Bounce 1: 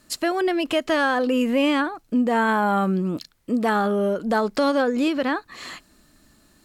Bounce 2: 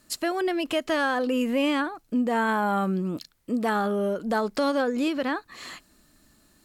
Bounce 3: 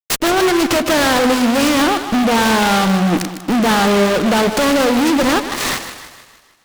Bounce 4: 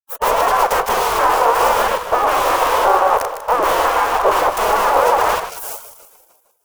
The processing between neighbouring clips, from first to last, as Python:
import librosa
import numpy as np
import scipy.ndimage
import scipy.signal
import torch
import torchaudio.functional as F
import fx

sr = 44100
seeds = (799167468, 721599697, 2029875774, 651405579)

y1 = fx.high_shelf(x, sr, hz=8400.0, db=4.5)
y1 = F.gain(torch.from_numpy(y1), -4.0).numpy()
y2 = fx.fuzz(y1, sr, gain_db=39.0, gate_db=-47.0)
y2 = fx.echo_split(y2, sr, split_hz=670.0, low_ms=103, high_ms=154, feedback_pct=52, wet_db=-10)
y2 = fx.noise_mod_delay(y2, sr, seeds[0], noise_hz=1900.0, depth_ms=0.066)
y3 = fx.spec_gate(y2, sr, threshold_db=-15, keep='weak')
y3 = np.clip(10.0 ** (16.0 / 20.0) * y3, -1.0, 1.0) / 10.0 ** (16.0 / 20.0)
y3 = fx.graphic_eq_10(y3, sr, hz=(125, 250, 500, 1000, 2000, 4000, 8000), db=(-11, -7, 11, 11, -6, -10, -5))
y3 = F.gain(torch.from_numpy(y3), 3.5).numpy()